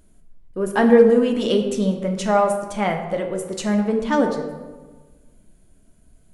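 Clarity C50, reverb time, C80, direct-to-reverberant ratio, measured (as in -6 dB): 6.5 dB, 1.4 s, 8.5 dB, 3.0 dB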